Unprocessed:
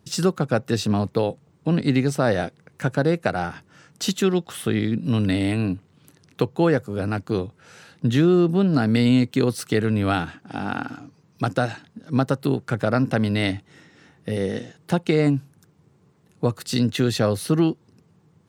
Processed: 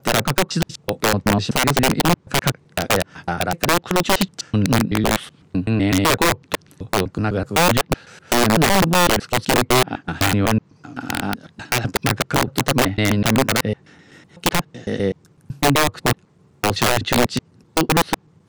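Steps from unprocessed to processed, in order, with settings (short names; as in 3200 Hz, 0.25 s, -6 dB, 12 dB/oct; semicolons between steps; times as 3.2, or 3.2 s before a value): slices in reverse order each 0.126 s, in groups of 6; treble ducked by the level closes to 2300 Hz, closed at -15 dBFS; wrapped overs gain 13.5 dB; gain +4.5 dB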